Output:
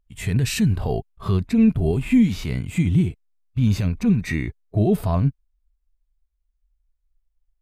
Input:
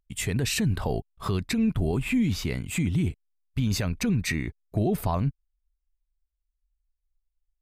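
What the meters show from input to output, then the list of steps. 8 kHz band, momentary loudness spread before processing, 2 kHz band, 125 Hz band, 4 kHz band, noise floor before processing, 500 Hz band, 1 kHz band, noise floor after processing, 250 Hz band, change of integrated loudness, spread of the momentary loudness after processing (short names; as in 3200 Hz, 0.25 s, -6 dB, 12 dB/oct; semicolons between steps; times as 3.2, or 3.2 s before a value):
-2.0 dB, 6 LU, +0.5 dB, +6.0 dB, -1.0 dB, -81 dBFS, +4.5 dB, +1.0 dB, -73 dBFS, +7.0 dB, +6.0 dB, 9 LU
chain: harmonic-percussive split percussive -14 dB; mismatched tape noise reduction decoder only; gain +8.5 dB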